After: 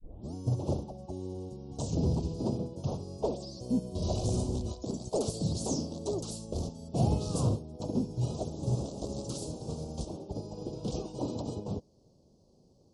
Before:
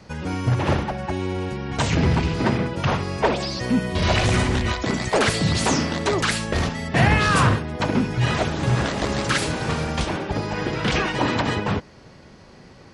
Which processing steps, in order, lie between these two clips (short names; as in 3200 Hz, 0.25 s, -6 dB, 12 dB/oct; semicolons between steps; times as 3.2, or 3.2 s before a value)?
tape start at the beginning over 0.34 s; Chebyshev band-stop 570–5700 Hz, order 2; upward expander 1.5:1, over -33 dBFS; gain -7 dB